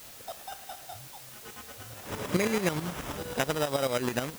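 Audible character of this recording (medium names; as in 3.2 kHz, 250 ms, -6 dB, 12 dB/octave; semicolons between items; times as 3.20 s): aliases and images of a low sample rate 4.4 kHz, jitter 0%; tremolo saw up 9.3 Hz, depth 70%; a quantiser's noise floor 8-bit, dither triangular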